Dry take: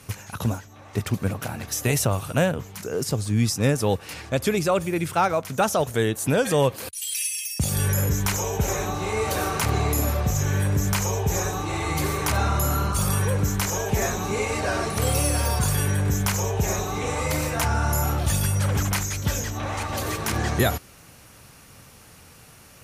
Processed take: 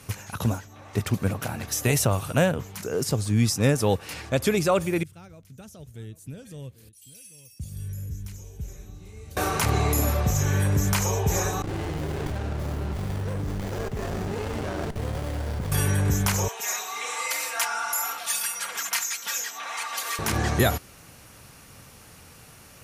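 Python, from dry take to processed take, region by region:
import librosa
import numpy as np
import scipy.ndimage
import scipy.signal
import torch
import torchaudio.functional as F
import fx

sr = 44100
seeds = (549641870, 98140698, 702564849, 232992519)

y = fx.chain(x, sr, fx.tone_stack(knobs='10-0-1'),
    fx.echo_single(ms=790, db=-16.5), at=(5.03, 9.37))
y = fx.chain(y, sr, fx.reverse_delay(ms=414, wet_db=-12.0),
    fx.level_steps(step_db=14),
    fx.running_max(window=33), at=(11.62, 15.72))
y = fx.chain(y, sr, fx.highpass(hz=1200.0, slope=12),
    fx.comb(ms=4.3, depth=0.7), at=(16.48, 20.19))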